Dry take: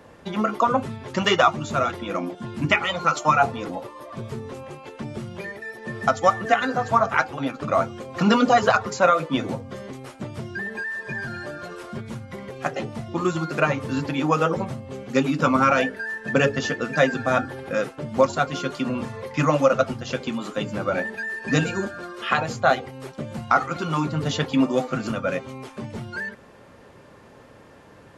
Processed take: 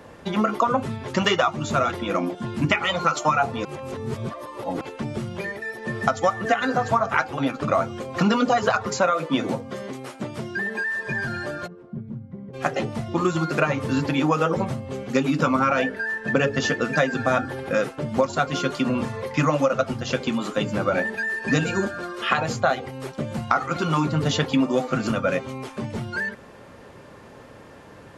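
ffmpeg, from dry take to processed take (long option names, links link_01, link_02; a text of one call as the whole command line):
ffmpeg -i in.wav -filter_complex "[0:a]asettb=1/sr,asplit=3[link_01][link_02][link_03];[link_01]atrim=end=9.124[link_04];[link_02]atrim=start=9.12:end=10.85,asetpts=PTS-STARTPTS,afade=type=in:duration=0.004:curve=qsin,afade=type=out:start_time=1.726:duration=0.004:curve=qsin,highpass=150[link_05];[link_03]atrim=start=10.846[link_06];[link_04][link_05]acrossfade=duration=0.004:curve1=hsin:curve2=qsin[link_07];[link_07][link_06]acrossfade=duration=0.004:curve1=qsin:curve2=hsin,asplit=3[link_08][link_09][link_10];[link_08]afade=type=out:start_time=11.66:duration=0.02[link_11];[link_09]bandpass=frequency=170:width_type=q:width=1.7,afade=type=in:start_time=11.66:duration=0.02,afade=type=out:start_time=12.53:duration=0.02[link_12];[link_10]afade=type=in:start_time=12.53:duration=0.02[link_13];[link_11][link_12][link_13]amix=inputs=3:normalize=0,asettb=1/sr,asplit=3[link_14][link_15][link_16];[link_14]atrim=end=15.594[link_17];[link_15]atrim=start=15.59:end=16.52,asetpts=PTS-STARTPTS,afade=type=in:duration=0.004:curve=qsin,afade=type=out:start_time=0.926:duration=0.004:curve=qsin,highshelf=frequency=5500:gain=-6[link_18];[link_16]atrim=start=16.516[link_19];[link_17][link_18]acrossfade=duration=0.004:curve1=hsin:curve2=qsin[link_20];[link_20][link_19]acrossfade=duration=0.004:curve1=qsin:curve2=hsin,asplit=3[link_21][link_22][link_23];[link_21]atrim=end=3.652[link_24];[link_22]atrim=start=3.648:end=4.812,asetpts=PTS-STARTPTS,areverse[link_25];[link_23]atrim=start=4.808[link_26];[link_24][link_25]acrossfade=duration=0.004:curve1=hsin:curve2=hsin[link_27];[link_27][link_26]acrossfade=duration=0.004:curve1=hsin:curve2=hsin,acompressor=threshold=-20dB:ratio=6,volume=3.5dB" out.wav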